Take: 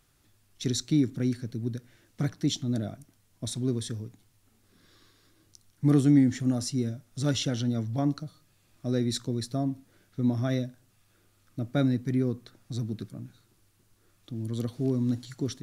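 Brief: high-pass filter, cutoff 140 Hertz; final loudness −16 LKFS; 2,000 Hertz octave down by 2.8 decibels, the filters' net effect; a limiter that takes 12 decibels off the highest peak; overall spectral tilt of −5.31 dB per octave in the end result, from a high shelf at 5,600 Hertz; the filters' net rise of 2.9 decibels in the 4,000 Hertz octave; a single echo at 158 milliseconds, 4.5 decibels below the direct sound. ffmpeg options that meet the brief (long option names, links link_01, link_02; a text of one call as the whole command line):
ffmpeg -i in.wav -af "highpass=140,equalizer=frequency=2000:width_type=o:gain=-4.5,equalizer=frequency=4000:width_type=o:gain=7.5,highshelf=frequency=5600:gain=-8,alimiter=limit=-24dB:level=0:latency=1,aecho=1:1:158:0.596,volume=18dB" out.wav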